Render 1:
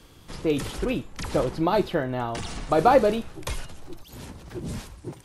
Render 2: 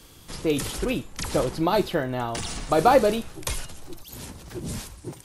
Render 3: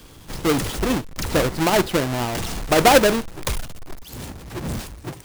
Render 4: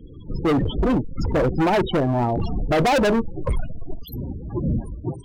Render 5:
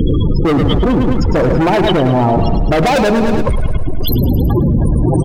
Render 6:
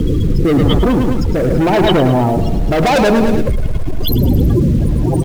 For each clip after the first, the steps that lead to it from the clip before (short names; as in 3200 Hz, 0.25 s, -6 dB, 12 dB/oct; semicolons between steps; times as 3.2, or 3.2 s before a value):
high shelf 4700 Hz +10 dB
half-waves squared off
loudest bins only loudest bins 16; overloaded stage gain 22.5 dB; gain +6 dB
on a send: feedback echo 0.107 s, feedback 55%, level -8.5 dB; on the sum: fast leveller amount 100%; gain +4 dB
rotary speaker horn 0.9 Hz; in parallel at -7 dB: bit-crush 5-bit; on the sum: gain -2 dB